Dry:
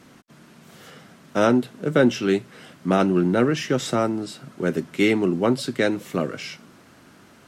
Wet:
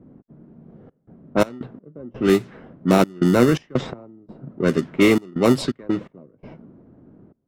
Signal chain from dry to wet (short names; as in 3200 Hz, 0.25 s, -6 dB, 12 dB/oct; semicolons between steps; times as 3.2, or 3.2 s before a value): in parallel at -6 dB: sample-rate reducer 1600 Hz, jitter 0%; on the sum: step gate "xxxxx.xx.x.." 84 bpm -24 dB; low-pass opened by the level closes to 430 Hz, open at -14 dBFS; gain +1.5 dB